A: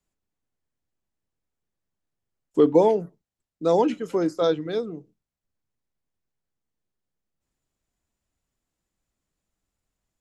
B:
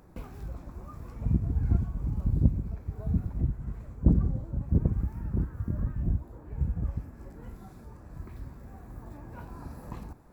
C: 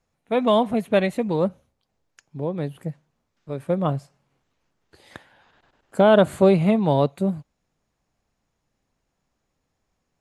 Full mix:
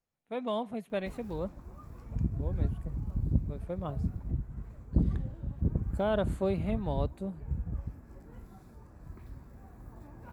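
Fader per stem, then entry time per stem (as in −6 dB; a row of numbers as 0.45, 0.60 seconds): muted, −5.0 dB, −14.5 dB; muted, 0.90 s, 0.00 s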